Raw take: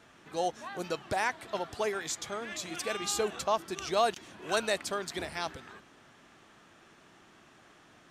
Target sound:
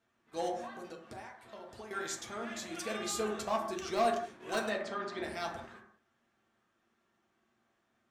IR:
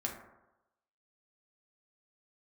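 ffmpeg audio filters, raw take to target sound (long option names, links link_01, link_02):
-filter_complex "[0:a]agate=range=-16dB:threshold=-49dB:ratio=16:detection=peak,asettb=1/sr,asplit=3[link_01][link_02][link_03];[link_01]atrim=end=0.644[link_04];[link_02]atrim=start=0.64:end=1.91,asetpts=PTS-STARTPTS,afade=type=in:duration=0.004:curve=qsin,afade=type=out:start_time=1.266:duration=0.004:curve=qsin,acompressor=threshold=-41dB:ratio=16[link_05];[link_03]atrim=start=1.906[link_06];[link_04][link_05]acrossfade=duration=0.004:curve1=hsin:curve2=qsin[link_07];[link_07][link_06]acrossfade=duration=0.004:curve1=qsin:curve2=hsin,asoftclip=type=hard:threshold=-23dB,asplit=3[link_08][link_09][link_10];[link_08]afade=type=out:start_time=4.68:duration=0.02[link_11];[link_09]highpass=110,lowpass=3700,afade=type=in:start_time=4.68:duration=0.02,afade=type=out:start_time=5.22:duration=0.02[link_12];[link_10]afade=type=in:start_time=5.22:duration=0.02[link_13];[link_11][link_12][link_13]amix=inputs=3:normalize=0[link_14];[1:a]atrim=start_sample=2205,afade=type=out:start_time=0.26:duration=0.01,atrim=end_sample=11907[link_15];[link_14][link_15]afir=irnorm=-1:irlink=0,volume=-4.5dB"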